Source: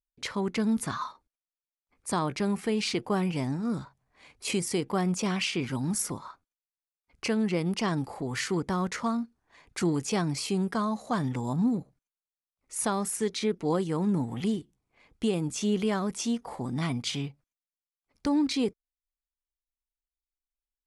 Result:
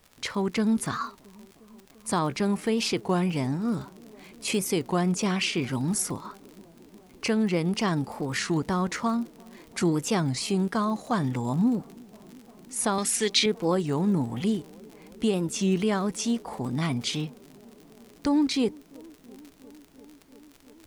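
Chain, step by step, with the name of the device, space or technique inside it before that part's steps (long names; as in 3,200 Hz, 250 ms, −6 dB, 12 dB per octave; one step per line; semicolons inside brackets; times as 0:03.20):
0:12.98–0:13.46: meter weighting curve D
delay with a band-pass on its return 343 ms, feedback 84%, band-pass 400 Hz, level −24 dB
warped LP (wow of a warped record 33 1/3 rpm, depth 160 cents; surface crackle 64 per second −39 dBFS; pink noise bed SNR 35 dB)
level +2.5 dB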